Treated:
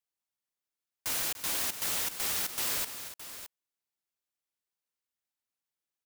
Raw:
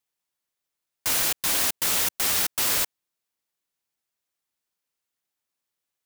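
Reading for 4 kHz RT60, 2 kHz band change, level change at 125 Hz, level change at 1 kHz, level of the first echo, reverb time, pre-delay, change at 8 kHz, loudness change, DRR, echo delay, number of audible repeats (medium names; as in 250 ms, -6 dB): no reverb, -8.0 dB, -8.0 dB, -8.0 dB, -13.0 dB, no reverb, no reverb, -8.0 dB, -8.5 dB, no reverb, 293 ms, 2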